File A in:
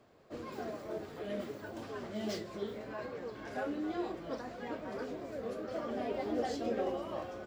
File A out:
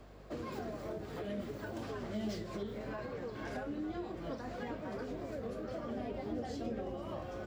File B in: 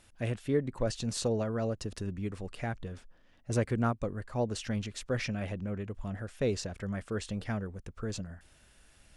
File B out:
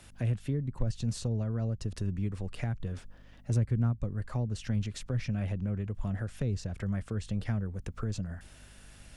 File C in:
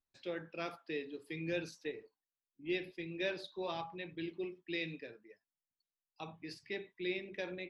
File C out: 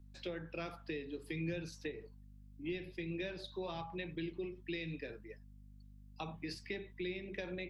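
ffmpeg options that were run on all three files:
ffmpeg -i in.wav -filter_complex "[0:a]aeval=exprs='val(0)+0.000794*(sin(2*PI*50*n/s)+sin(2*PI*2*50*n/s)/2+sin(2*PI*3*50*n/s)/3+sin(2*PI*4*50*n/s)/4+sin(2*PI*5*50*n/s)/5)':channel_layout=same,acrossover=split=180[link_01][link_02];[link_02]acompressor=threshold=-46dB:ratio=10[link_03];[link_01][link_03]amix=inputs=2:normalize=0,volume=6.5dB" out.wav

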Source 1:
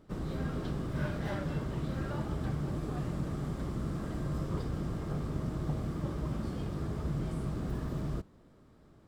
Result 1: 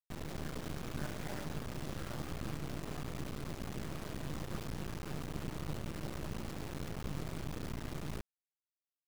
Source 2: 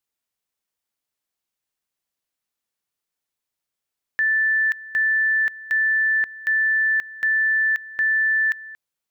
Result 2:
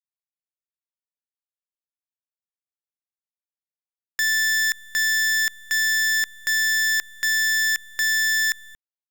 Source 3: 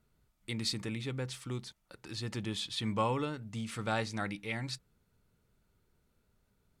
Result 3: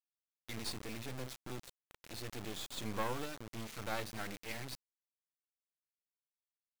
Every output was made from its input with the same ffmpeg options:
ffmpeg -i in.wav -af "aresample=16000,aresample=44100,acrusher=bits=4:dc=4:mix=0:aa=0.000001,volume=-3dB" out.wav

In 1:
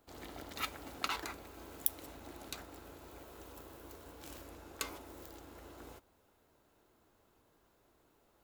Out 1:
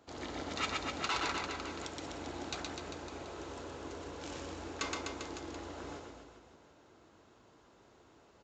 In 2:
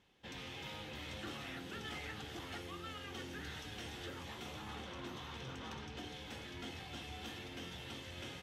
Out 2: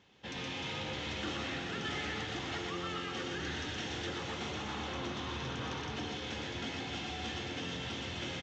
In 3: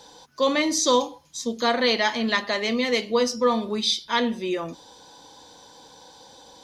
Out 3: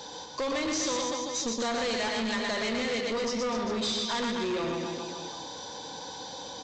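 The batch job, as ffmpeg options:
ffmpeg -i in.wav -af "highpass=67,acompressor=threshold=-30dB:ratio=5,aecho=1:1:120|252|397.2|556.9|732.6:0.631|0.398|0.251|0.158|0.1,aresample=16000,asoftclip=type=tanh:threshold=-33.5dB,aresample=44100,volume=6.5dB" out.wav

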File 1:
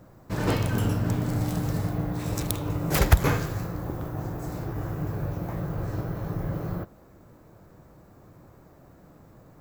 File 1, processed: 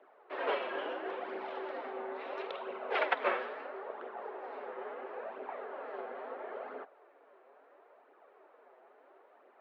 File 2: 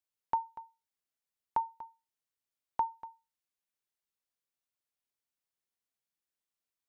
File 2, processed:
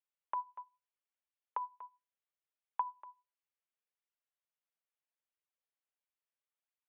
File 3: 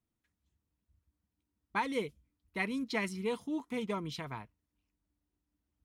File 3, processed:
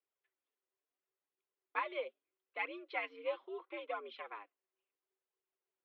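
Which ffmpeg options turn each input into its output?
ffmpeg -i in.wav -af "flanger=delay=0.3:depth=7.1:regen=23:speed=0.74:shape=triangular,highpass=frequency=340:width_type=q:width=0.5412,highpass=frequency=340:width_type=q:width=1.307,lowpass=frequency=3200:width_type=q:width=0.5176,lowpass=frequency=3200:width_type=q:width=0.7071,lowpass=frequency=3200:width_type=q:width=1.932,afreqshift=85" out.wav

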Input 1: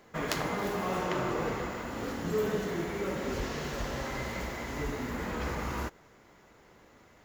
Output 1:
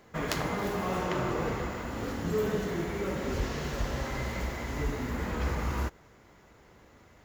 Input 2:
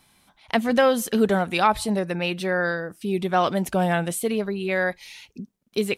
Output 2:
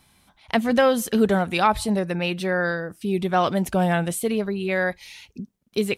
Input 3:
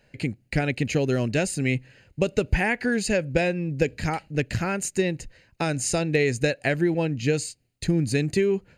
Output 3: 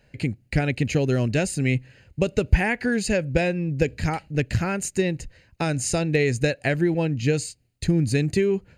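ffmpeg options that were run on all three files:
ffmpeg -i in.wav -af "equalizer=frequency=67:width_type=o:width=2:gain=7" out.wav

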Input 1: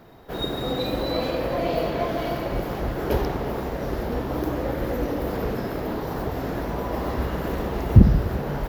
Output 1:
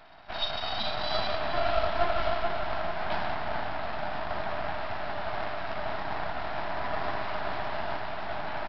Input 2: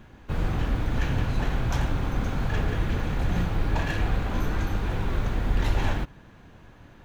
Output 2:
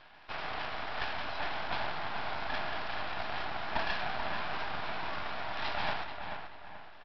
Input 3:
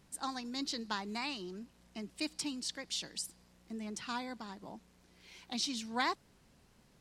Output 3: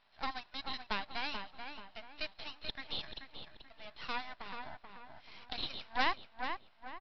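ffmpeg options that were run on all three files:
ffmpeg -i in.wav -filter_complex "[0:a]afftfilt=real='re*between(b*sr/4096,590,4300)':imag='im*between(b*sr/4096,590,4300)':win_size=4096:overlap=0.75,adynamicequalizer=threshold=0.00562:dfrequency=2200:dqfactor=1.1:tfrequency=2200:tqfactor=1.1:attack=5:release=100:ratio=0.375:range=2:mode=cutabove:tftype=bell,aresample=11025,aeval=exprs='max(val(0),0)':channel_layout=same,aresample=44100,asplit=2[link_01][link_02];[link_02]adelay=434,lowpass=frequency=2600:poles=1,volume=-6dB,asplit=2[link_03][link_04];[link_04]adelay=434,lowpass=frequency=2600:poles=1,volume=0.39,asplit=2[link_05][link_06];[link_06]adelay=434,lowpass=frequency=2600:poles=1,volume=0.39,asplit=2[link_07][link_08];[link_08]adelay=434,lowpass=frequency=2600:poles=1,volume=0.39,asplit=2[link_09][link_10];[link_10]adelay=434,lowpass=frequency=2600:poles=1,volume=0.39[link_11];[link_01][link_03][link_05][link_07][link_09][link_11]amix=inputs=6:normalize=0,volume=5.5dB" out.wav

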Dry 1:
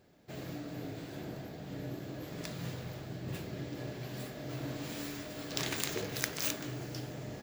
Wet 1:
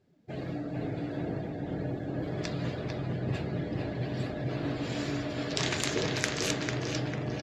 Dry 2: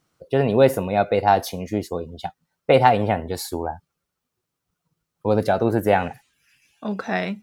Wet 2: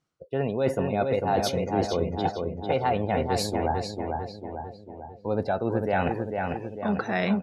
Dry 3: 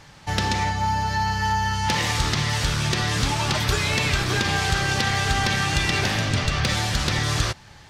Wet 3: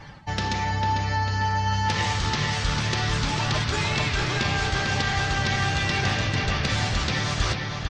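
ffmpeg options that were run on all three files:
ffmpeg -i in.wav -filter_complex "[0:a]areverse,acompressor=threshold=-30dB:ratio=6,areverse,lowpass=8100,asplit=2[link_01][link_02];[link_02]adelay=448,lowpass=frequency=4900:poles=1,volume=-4dB,asplit=2[link_03][link_04];[link_04]adelay=448,lowpass=frequency=4900:poles=1,volume=0.55,asplit=2[link_05][link_06];[link_06]adelay=448,lowpass=frequency=4900:poles=1,volume=0.55,asplit=2[link_07][link_08];[link_08]adelay=448,lowpass=frequency=4900:poles=1,volume=0.55,asplit=2[link_09][link_10];[link_10]adelay=448,lowpass=frequency=4900:poles=1,volume=0.55,asplit=2[link_11][link_12];[link_12]adelay=448,lowpass=frequency=4900:poles=1,volume=0.55,asplit=2[link_13][link_14];[link_14]adelay=448,lowpass=frequency=4900:poles=1,volume=0.55[link_15];[link_01][link_03][link_05][link_07][link_09][link_11][link_13][link_15]amix=inputs=8:normalize=0,afftdn=noise_reduction=16:noise_floor=-52,volume=6.5dB" out.wav

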